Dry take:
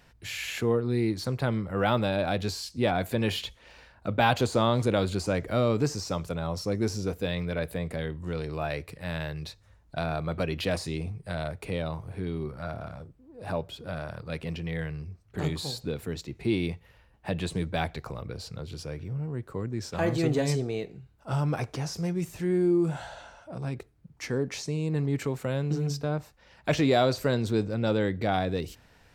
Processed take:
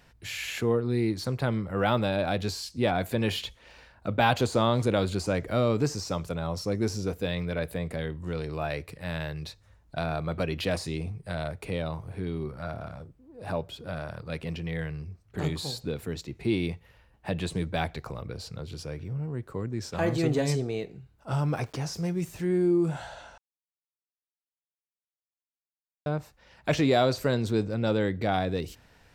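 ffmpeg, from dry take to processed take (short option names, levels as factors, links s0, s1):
-filter_complex "[0:a]asettb=1/sr,asplit=3[s0][s1][s2];[s0]atrim=end=21.434[s3];[s1]atrim=start=21.43:end=22.45,asetpts=PTS-STARTPTS,afade=t=in:d=0.004:c=qsin,afade=t=out:st=1.016:d=0.004:c=qsin,aeval=exprs='val(0)*gte(abs(val(0)),0.00211)':c=same[s4];[s2]atrim=start=22.446[s5];[s3][s4]acrossfade=d=0.004:c1=hsin:c2=qsin[s6];[s6][s5]acrossfade=d=0.004:c1=qsin:c2=hsin,asplit=3[s7][s8][s9];[s7]atrim=end=23.38,asetpts=PTS-STARTPTS,afade=t=out:st=23.376:d=0.004:c=hsin[s10];[s8]atrim=start=23.38:end=26.06,asetpts=PTS-STARTPTS,volume=0[s11];[s9]atrim=start=26.06,asetpts=PTS-STARTPTS,afade=t=in:d=0.004:c=hsin[s12];[s10][s11][s12]concat=n=3:v=0:a=1"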